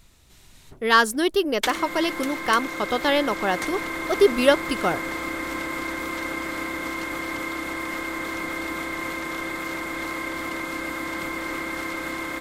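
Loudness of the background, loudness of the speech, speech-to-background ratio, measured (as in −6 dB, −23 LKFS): −29.0 LKFS, −22.5 LKFS, 6.5 dB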